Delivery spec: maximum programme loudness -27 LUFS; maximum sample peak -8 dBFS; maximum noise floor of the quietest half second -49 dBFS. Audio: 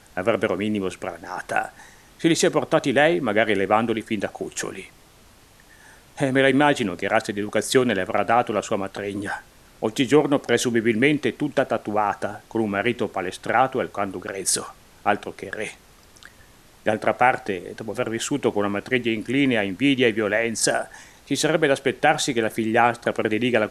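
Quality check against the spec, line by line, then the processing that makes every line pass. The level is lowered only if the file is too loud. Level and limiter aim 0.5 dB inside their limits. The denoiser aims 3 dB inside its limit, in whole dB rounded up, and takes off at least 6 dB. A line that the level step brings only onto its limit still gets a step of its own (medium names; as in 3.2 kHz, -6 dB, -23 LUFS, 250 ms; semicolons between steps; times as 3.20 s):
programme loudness -22.5 LUFS: fail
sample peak -3.5 dBFS: fail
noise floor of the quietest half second -52 dBFS: pass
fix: trim -5 dB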